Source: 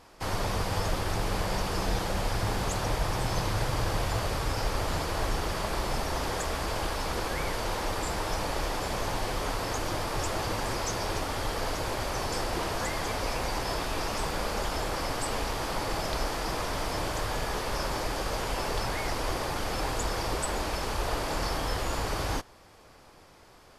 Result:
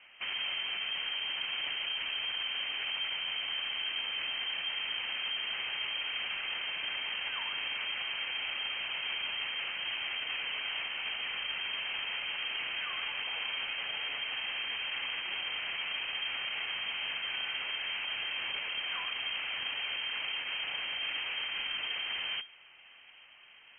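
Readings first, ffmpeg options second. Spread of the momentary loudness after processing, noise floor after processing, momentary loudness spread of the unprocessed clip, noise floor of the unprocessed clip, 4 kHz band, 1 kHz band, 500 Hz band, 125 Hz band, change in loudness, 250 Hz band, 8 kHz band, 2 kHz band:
1 LU, -56 dBFS, 2 LU, -54 dBFS, +5.5 dB, -14.5 dB, -21.5 dB, under -30 dB, -2.5 dB, -24.5 dB, under -40 dB, +1.5 dB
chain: -af "alimiter=level_in=2dB:limit=-24dB:level=0:latency=1:release=36,volume=-2dB,lowpass=f=2.7k:t=q:w=0.5098,lowpass=f=2.7k:t=q:w=0.6013,lowpass=f=2.7k:t=q:w=0.9,lowpass=f=2.7k:t=q:w=2.563,afreqshift=-3200,volume=-1.5dB"

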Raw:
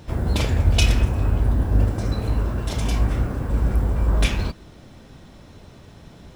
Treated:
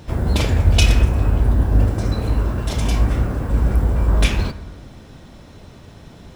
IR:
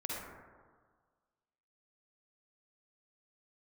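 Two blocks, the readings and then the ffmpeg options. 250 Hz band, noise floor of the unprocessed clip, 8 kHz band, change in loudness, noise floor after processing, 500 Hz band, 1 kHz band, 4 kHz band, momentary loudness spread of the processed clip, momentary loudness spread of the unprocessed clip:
+3.0 dB, -46 dBFS, +3.0 dB, +3.5 dB, -42 dBFS, +3.5 dB, +3.0 dB, +3.0 dB, 7 LU, 7 LU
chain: -filter_complex "[0:a]asplit=2[a][b];[1:a]atrim=start_sample=2205[c];[b][c]afir=irnorm=-1:irlink=0,volume=-14dB[d];[a][d]amix=inputs=2:normalize=0,volume=2dB"

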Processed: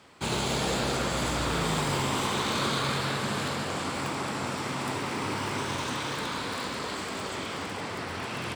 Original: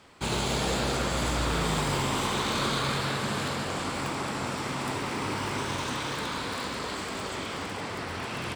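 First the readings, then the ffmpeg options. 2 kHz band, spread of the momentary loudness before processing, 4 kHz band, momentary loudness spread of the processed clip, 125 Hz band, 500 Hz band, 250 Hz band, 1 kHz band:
0.0 dB, 7 LU, 0.0 dB, 6 LU, -1.0 dB, 0.0 dB, 0.0 dB, 0.0 dB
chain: -af "highpass=73"

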